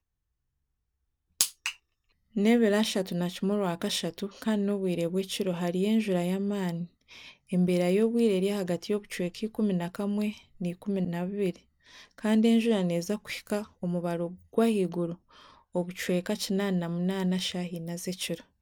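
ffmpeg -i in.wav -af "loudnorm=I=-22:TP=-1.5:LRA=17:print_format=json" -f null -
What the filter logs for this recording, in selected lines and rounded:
"input_i" : "-29.4",
"input_tp" : "-5.2",
"input_lra" : "3.0",
"input_thresh" : "-39.6",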